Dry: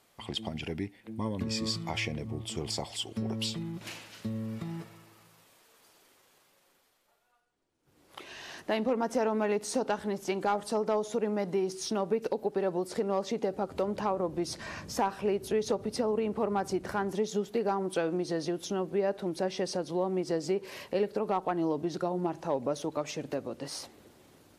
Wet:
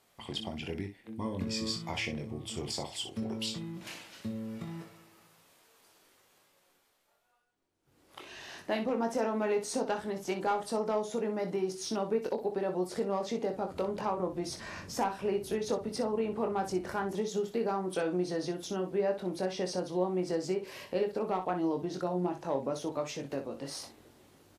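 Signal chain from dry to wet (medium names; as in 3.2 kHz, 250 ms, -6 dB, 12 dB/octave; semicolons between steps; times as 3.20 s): early reflections 22 ms -6 dB, 61 ms -10 dB; trim -3 dB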